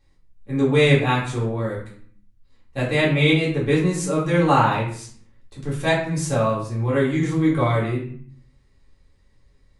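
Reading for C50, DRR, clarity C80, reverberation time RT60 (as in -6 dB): 5.5 dB, -7.0 dB, 9.5 dB, 0.50 s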